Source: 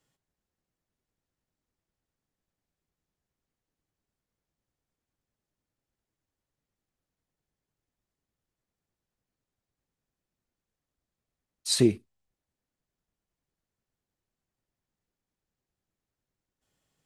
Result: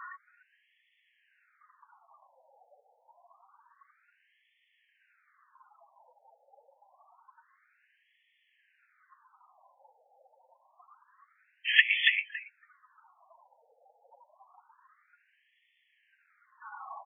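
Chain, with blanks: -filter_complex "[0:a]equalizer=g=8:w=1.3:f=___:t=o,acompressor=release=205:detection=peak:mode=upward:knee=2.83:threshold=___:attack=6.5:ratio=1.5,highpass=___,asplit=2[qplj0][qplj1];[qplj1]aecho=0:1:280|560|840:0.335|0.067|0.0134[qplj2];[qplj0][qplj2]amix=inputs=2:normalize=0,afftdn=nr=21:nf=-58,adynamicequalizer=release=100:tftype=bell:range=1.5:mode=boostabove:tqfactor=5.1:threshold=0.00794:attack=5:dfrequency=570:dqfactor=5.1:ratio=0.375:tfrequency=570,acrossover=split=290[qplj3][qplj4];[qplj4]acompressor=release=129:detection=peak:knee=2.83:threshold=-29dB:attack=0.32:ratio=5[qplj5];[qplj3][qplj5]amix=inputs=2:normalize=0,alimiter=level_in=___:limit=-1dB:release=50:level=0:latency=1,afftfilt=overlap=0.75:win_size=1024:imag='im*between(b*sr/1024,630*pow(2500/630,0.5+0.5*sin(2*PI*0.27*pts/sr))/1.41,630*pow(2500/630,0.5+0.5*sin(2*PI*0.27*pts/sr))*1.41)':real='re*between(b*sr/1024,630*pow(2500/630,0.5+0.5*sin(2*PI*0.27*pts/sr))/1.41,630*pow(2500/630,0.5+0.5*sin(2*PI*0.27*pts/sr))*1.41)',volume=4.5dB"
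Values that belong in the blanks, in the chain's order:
1100, -23dB, 150, 22.5dB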